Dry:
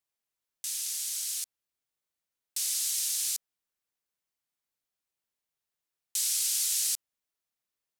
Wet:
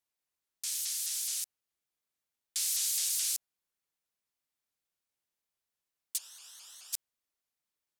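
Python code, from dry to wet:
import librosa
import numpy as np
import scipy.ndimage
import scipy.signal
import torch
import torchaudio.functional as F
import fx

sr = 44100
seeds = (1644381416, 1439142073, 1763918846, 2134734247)

y = fx.moving_average(x, sr, points=20, at=(6.17, 6.92), fade=0.02)
y = fx.vibrato_shape(y, sr, shape='saw_up', rate_hz=4.7, depth_cents=250.0)
y = y * librosa.db_to_amplitude(-1.0)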